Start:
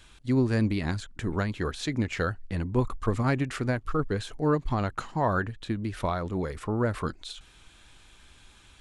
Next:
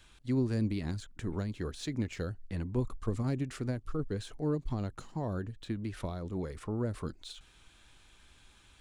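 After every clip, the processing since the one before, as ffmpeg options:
-filter_complex "[0:a]acrossover=split=540|3800[a][b][c];[b]acompressor=threshold=-42dB:ratio=6[d];[c]acrusher=bits=5:mode=log:mix=0:aa=0.000001[e];[a][d][e]amix=inputs=3:normalize=0,volume=-5.5dB"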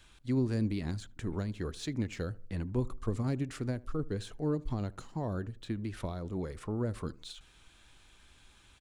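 -filter_complex "[0:a]asplit=2[a][b];[b]adelay=77,lowpass=f=1.3k:p=1,volume=-21dB,asplit=2[c][d];[d]adelay=77,lowpass=f=1.3k:p=1,volume=0.4,asplit=2[e][f];[f]adelay=77,lowpass=f=1.3k:p=1,volume=0.4[g];[a][c][e][g]amix=inputs=4:normalize=0"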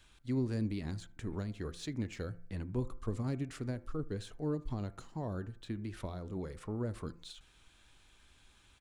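-af "bandreject=f=171.4:t=h:w=4,bandreject=f=342.8:t=h:w=4,bandreject=f=514.2:t=h:w=4,bandreject=f=685.6:t=h:w=4,bandreject=f=857:t=h:w=4,bandreject=f=1.0284k:t=h:w=4,bandreject=f=1.1998k:t=h:w=4,bandreject=f=1.3712k:t=h:w=4,bandreject=f=1.5426k:t=h:w=4,bandreject=f=1.714k:t=h:w=4,bandreject=f=1.8854k:t=h:w=4,bandreject=f=2.0568k:t=h:w=4,bandreject=f=2.2282k:t=h:w=4,bandreject=f=2.3996k:t=h:w=4,volume=-3.5dB"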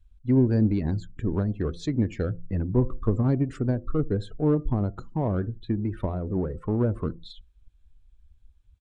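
-filter_complex "[0:a]afftdn=nr=27:nf=-51,asplit=2[a][b];[b]adynamicsmooth=sensitivity=5.5:basefreq=980,volume=1dB[c];[a][c]amix=inputs=2:normalize=0,volume=6.5dB"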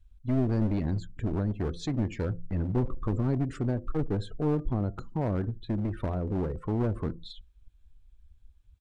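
-filter_complex "[0:a]asplit=2[a][b];[b]alimiter=limit=-22dB:level=0:latency=1:release=26,volume=1.5dB[c];[a][c]amix=inputs=2:normalize=0,aeval=exprs='clip(val(0),-1,0.0794)':c=same,volume=-7dB"

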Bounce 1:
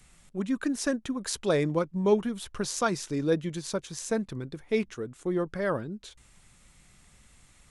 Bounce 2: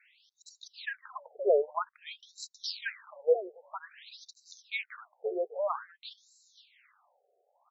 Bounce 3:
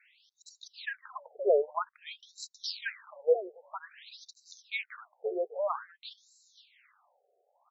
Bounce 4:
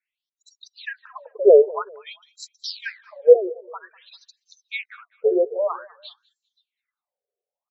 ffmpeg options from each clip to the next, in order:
-filter_complex "[0:a]highpass=f=240:p=1,asplit=2[a][b];[b]adelay=524.8,volume=-9dB,highshelf=f=4k:g=-11.8[c];[a][c]amix=inputs=2:normalize=0,afftfilt=real='re*between(b*sr/1024,530*pow(5500/530,0.5+0.5*sin(2*PI*0.51*pts/sr))/1.41,530*pow(5500/530,0.5+0.5*sin(2*PI*0.51*pts/sr))*1.41)':imag='im*between(b*sr/1024,530*pow(5500/530,0.5+0.5*sin(2*PI*0.51*pts/sr))/1.41,530*pow(5500/530,0.5+0.5*sin(2*PI*0.51*pts/sr))*1.41)':win_size=1024:overlap=0.75,volume=3.5dB"
-af anull
-filter_complex "[0:a]afftdn=nr=29:nf=-47,lowshelf=f=580:t=q:w=1.5:g=8,asplit=2[a][b];[b]adelay=198,lowpass=f=4.6k:p=1,volume=-22.5dB,asplit=2[c][d];[d]adelay=198,lowpass=f=4.6k:p=1,volume=0.36[e];[a][c][e]amix=inputs=3:normalize=0,volume=5.5dB"

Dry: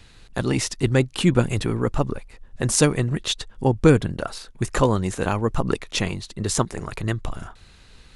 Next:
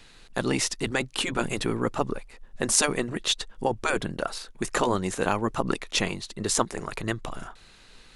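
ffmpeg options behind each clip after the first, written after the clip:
-af "afftfilt=real='re*lt(hypot(re,im),0.794)':imag='im*lt(hypot(re,im),0.794)':win_size=1024:overlap=0.75,equalizer=f=69:t=o:w=2:g=-13.5"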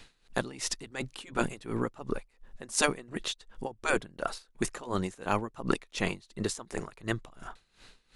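-af "aeval=exprs='val(0)*pow(10,-21*(0.5-0.5*cos(2*PI*2.8*n/s))/20)':c=same"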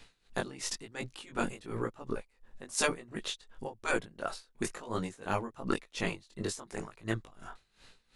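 -af "flanger=delay=17.5:depth=4.2:speed=1"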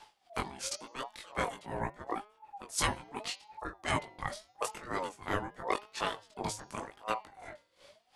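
-af "bandreject=f=210.9:t=h:w=4,bandreject=f=421.8:t=h:w=4,bandreject=f=632.7:t=h:w=4,bandreject=f=843.6:t=h:w=4,bandreject=f=1.0545k:t=h:w=4,bandreject=f=1.2654k:t=h:w=4,bandreject=f=1.4763k:t=h:w=4,bandreject=f=1.6872k:t=h:w=4,bandreject=f=1.8981k:t=h:w=4,bandreject=f=2.109k:t=h:w=4,bandreject=f=2.3199k:t=h:w=4,bandreject=f=2.5308k:t=h:w=4,bandreject=f=2.7417k:t=h:w=4,bandreject=f=2.9526k:t=h:w=4,bandreject=f=3.1635k:t=h:w=4,bandreject=f=3.3744k:t=h:w=4,bandreject=f=3.5853k:t=h:w=4,bandreject=f=3.7962k:t=h:w=4,bandreject=f=4.0071k:t=h:w=4,bandreject=f=4.218k:t=h:w=4,bandreject=f=4.4289k:t=h:w=4,bandreject=f=4.6398k:t=h:w=4,bandreject=f=4.8507k:t=h:w=4,bandreject=f=5.0616k:t=h:w=4,bandreject=f=5.2725k:t=h:w=4,bandreject=f=5.4834k:t=h:w=4,bandreject=f=5.6943k:t=h:w=4,bandreject=f=5.9052k:t=h:w=4,bandreject=f=6.1161k:t=h:w=4,aeval=exprs='val(0)*sin(2*PI*700*n/s+700*0.25/0.84*sin(2*PI*0.84*n/s))':c=same,volume=2dB"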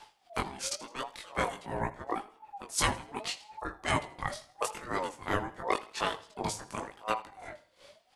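-af "aecho=1:1:81|162|243:0.112|0.0404|0.0145,volume=2.5dB"

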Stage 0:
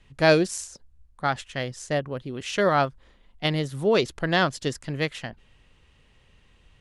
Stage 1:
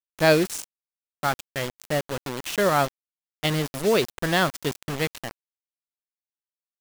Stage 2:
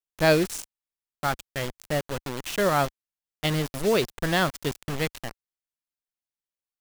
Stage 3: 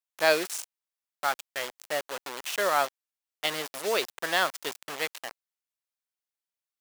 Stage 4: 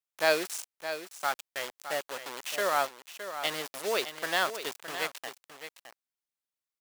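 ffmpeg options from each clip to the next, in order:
-af "acrusher=bits=4:mix=0:aa=0.000001"
-af "lowshelf=f=63:g=11,volume=-2dB"
-af "highpass=600"
-af "aecho=1:1:615:0.299,volume=-2.5dB"

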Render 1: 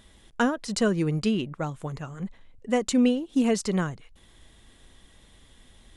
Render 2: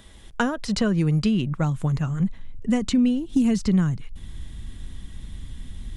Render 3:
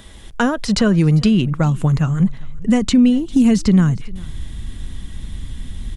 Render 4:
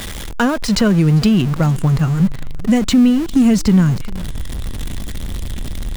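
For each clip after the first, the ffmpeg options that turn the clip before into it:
-filter_complex "[0:a]asubboost=boost=10.5:cutoff=170,acrossover=split=150|5300[a][b][c];[a]acompressor=threshold=-36dB:ratio=4[d];[b]acompressor=threshold=-26dB:ratio=4[e];[c]acompressor=threshold=-50dB:ratio=4[f];[d][e][f]amix=inputs=3:normalize=0,volume=5.5dB"
-af "aecho=1:1:399:0.0708,alimiter=level_in=12dB:limit=-1dB:release=50:level=0:latency=1,volume=-4.5dB"
-af "aeval=exprs='val(0)+0.5*0.0708*sgn(val(0))':c=same"

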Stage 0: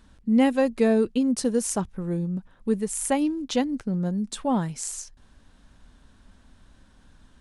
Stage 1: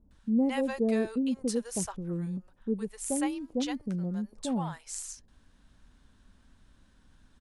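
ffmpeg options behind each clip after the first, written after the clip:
-filter_complex "[0:a]acrossover=split=680[a][b];[b]adelay=110[c];[a][c]amix=inputs=2:normalize=0,volume=-6dB"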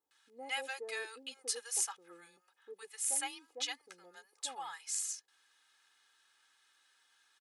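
-af "highpass=1.4k,aecho=1:1:2.4:0.93"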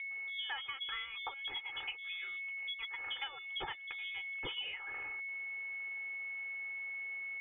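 -af "aeval=exprs='val(0)+0.00282*sin(2*PI*1600*n/s)':c=same,lowpass=f=3.2k:t=q:w=0.5098,lowpass=f=3.2k:t=q:w=0.6013,lowpass=f=3.2k:t=q:w=0.9,lowpass=f=3.2k:t=q:w=2.563,afreqshift=-3800,acompressor=threshold=-50dB:ratio=10,volume=12dB"

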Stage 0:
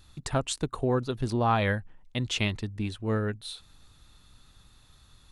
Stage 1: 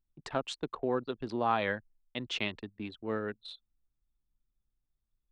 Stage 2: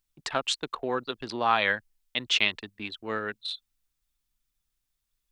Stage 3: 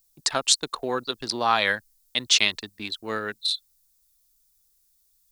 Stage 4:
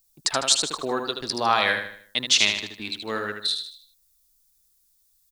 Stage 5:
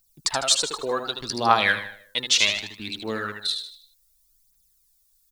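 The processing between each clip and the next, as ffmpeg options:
-filter_complex "[0:a]acrossover=split=210 5200:gain=0.158 1 0.112[a][b][c];[a][b][c]amix=inputs=3:normalize=0,anlmdn=0.1,volume=-3.5dB"
-af "tiltshelf=f=970:g=-7.5,volume=5.5dB"
-af "aexciter=amount=4.6:drive=4.3:freq=4.1k,volume=2dB"
-af "aecho=1:1:77|154|231|308|385:0.473|0.194|0.0795|0.0326|0.0134"
-af "aphaser=in_gain=1:out_gain=1:delay=2.4:decay=0.54:speed=0.66:type=triangular,volume=-1.5dB"

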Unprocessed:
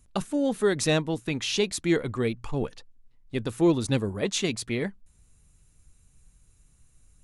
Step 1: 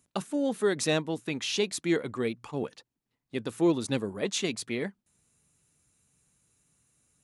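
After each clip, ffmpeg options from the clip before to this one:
-af "highpass=170,volume=-2.5dB"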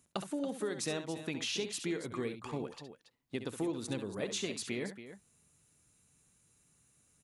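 -filter_complex "[0:a]acompressor=threshold=-34dB:ratio=6,asplit=2[a][b];[b]aecho=0:1:67.06|279.9:0.316|0.251[c];[a][c]amix=inputs=2:normalize=0"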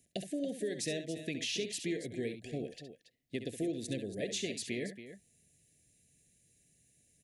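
-af "asuperstop=centerf=1100:order=20:qfactor=1.2"

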